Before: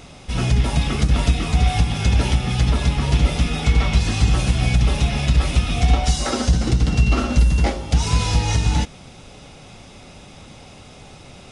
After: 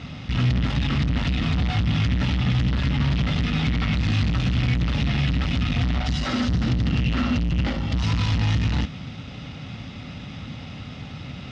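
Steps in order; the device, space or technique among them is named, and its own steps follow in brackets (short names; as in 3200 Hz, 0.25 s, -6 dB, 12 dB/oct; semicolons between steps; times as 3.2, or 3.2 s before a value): guitar amplifier (tube stage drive 28 dB, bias 0.45; tone controls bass +14 dB, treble +13 dB; speaker cabinet 88–4000 Hz, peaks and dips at 260 Hz +5 dB, 380 Hz -5 dB, 1300 Hz +6 dB, 1900 Hz +8 dB, 2900 Hz +4 dB)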